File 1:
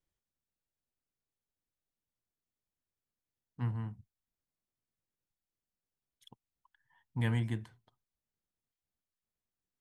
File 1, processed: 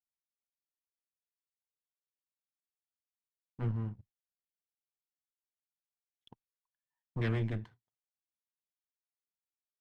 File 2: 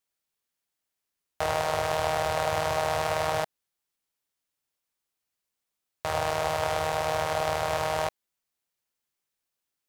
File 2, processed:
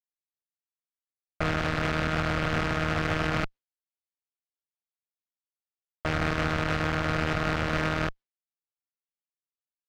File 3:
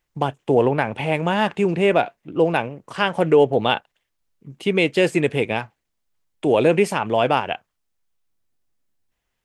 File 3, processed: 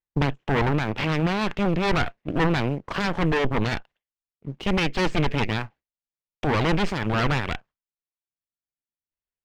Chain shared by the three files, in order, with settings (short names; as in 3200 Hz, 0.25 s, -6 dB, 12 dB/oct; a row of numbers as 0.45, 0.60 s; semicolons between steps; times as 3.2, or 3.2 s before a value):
added harmonics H 3 -25 dB, 8 -9 dB, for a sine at -3 dBFS; limiter -13.5 dBFS; gate with hold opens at -50 dBFS; air absorption 170 m; sample leveller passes 1; dynamic EQ 680 Hz, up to -6 dB, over -35 dBFS, Q 0.89; vocal rider within 3 dB 0.5 s; gain +2.5 dB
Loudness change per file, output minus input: 0.0, 0.0, -4.5 LU